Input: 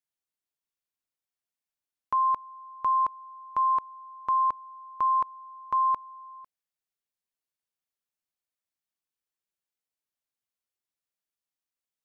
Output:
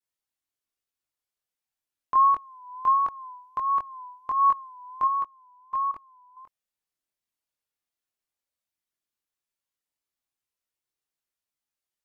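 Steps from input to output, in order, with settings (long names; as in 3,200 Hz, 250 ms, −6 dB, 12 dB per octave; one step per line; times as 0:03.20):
multi-voice chorus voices 4, 0.17 Hz, delay 23 ms, depth 2 ms
pitch vibrato 1.4 Hz 94 cents
0:05.07–0:06.37: output level in coarse steps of 15 dB
level +4.5 dB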